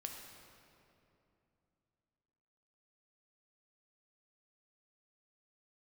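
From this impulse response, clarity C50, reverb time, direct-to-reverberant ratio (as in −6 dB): 3.0 dB, 2.8 s, 1.5 dB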